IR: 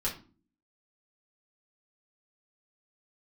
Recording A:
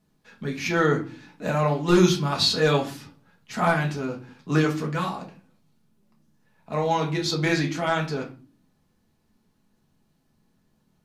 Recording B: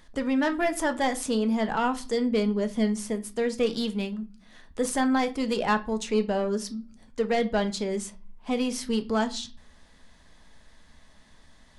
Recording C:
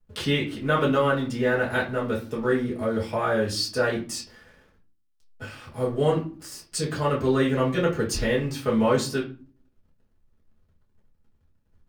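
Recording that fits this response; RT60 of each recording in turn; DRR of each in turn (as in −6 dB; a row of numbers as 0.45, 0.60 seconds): C; 0.40, 0.40, 0.40 seconds; −1.0, 7.0, −6.5 decibels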